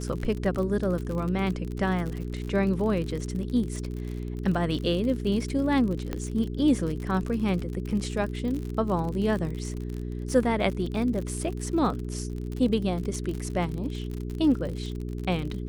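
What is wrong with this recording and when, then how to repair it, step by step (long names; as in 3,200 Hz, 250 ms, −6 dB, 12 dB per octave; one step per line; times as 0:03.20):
surface crackle 53 per second −32 dBFS
mains hum 60 Hz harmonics 7 −33 dBFS
0:06.13: click −17 dBFS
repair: click removal
hum removal 60 Hz, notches 7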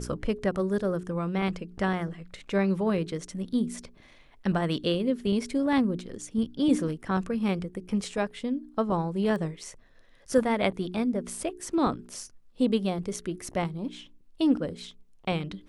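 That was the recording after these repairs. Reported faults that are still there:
none of them is left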